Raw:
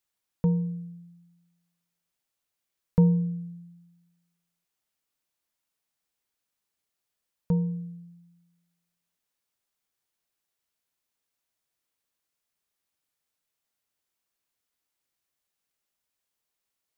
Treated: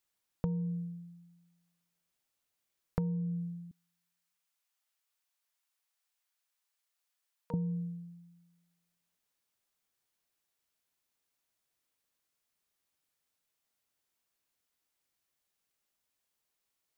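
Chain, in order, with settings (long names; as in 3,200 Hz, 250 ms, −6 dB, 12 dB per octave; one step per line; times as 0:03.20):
0:03.71–0:07.54: high-pass filter 800 Hz 12 dB per octave
downward compressor 12 to 1, threshold −30 dBFS, peak gain reduction 15 dB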